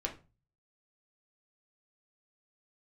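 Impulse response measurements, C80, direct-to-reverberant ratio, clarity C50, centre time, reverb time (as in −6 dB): 18.5 dB, 0.0 dB, 12.5 dB, 13 ms, 0.30 s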